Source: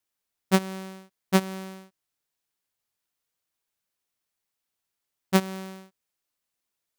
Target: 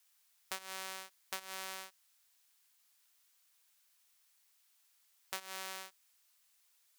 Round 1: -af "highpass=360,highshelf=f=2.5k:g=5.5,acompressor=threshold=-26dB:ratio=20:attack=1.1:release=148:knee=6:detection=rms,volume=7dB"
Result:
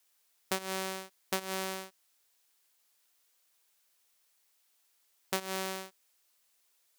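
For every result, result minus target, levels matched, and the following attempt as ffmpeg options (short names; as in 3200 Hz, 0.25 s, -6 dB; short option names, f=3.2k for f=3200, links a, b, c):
500 Hz band +8.0 dB; compressor: peak gain reduction -6.5 dB
-af "highpass=880,highshelf=f=2.5k:g=5.5,acompressor=threshold=-26dB:ratio=20:attack=1.1:release=148:knee=6:detection=rms,volume=7dB"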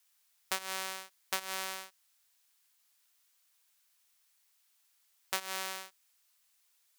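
compressor: peak gain reduction -7.5 dB
-af "highpass=880,highshelf=f=2.5k:g=5.5,acompressor=threshold=-34dB:ratio=20:attack=1.1:release=148:knee=6:detection=rms,volume=7dB"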